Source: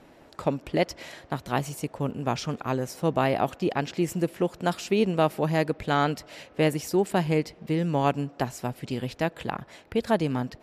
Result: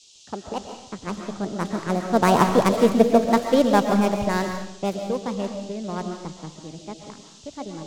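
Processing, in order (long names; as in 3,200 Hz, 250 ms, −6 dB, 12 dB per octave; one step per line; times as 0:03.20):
gap after every zero crossing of 0.13 ms
source passing by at 0:03.78, 20 m/s, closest 20 metres
low-shelf EQ 480 Hz +11 dB
downward expander −54 dBFS
dynamic equaliser 230 Hz, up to −5 dB, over −33 dBFS, Q 1.2
wrong playback speed 33 rpm record played at 45 rpm
low-pass that shuts in the quiet parts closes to 2,100 Hz, open at −22 dBFS
noise in a band 2,800–7,400 Hz −51 dBFS
comb and all-pass reverb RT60 0.82 s, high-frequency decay 0.9×, pre-delay 95 ms, DRR 4 dB
multiband upward and downward expander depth 40%
level +3 dB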